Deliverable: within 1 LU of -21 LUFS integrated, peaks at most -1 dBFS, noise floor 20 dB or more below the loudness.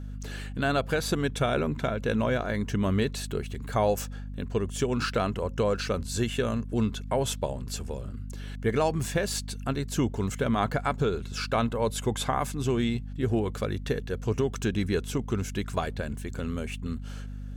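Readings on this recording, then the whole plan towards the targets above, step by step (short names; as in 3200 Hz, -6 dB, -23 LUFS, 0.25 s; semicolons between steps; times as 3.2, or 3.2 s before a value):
hum 50 Hz; harmonics up to 250 Hz; hum level -35 dBFS; loudness -29.5 LUFS; peak -13.5 dBFS; loudness target -21.0 LUFS
-> notches 50/100/150/200/250 Hz; gain +8.5 dB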